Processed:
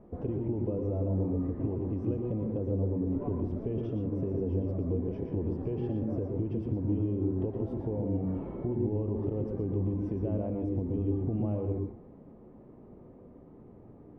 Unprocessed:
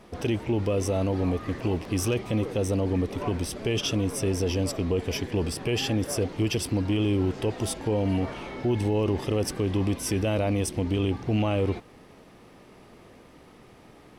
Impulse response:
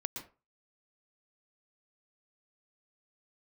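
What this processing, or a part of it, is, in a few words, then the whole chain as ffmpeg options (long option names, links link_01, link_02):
television next door: -filter_complex "[0:a]acompressor=threshold=-28dB:ratio=6,lowpass=550[link_01];[1:a]atrim=start_sample=2205[link_02];[link_01][link_02]afir=irnorm=-1:irlink=0"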